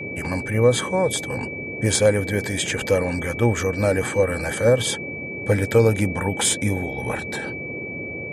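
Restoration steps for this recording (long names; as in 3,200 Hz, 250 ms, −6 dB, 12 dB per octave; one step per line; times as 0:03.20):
notch filter 2,300 Hz, Q 30
noise reduction from a noise print 30 dB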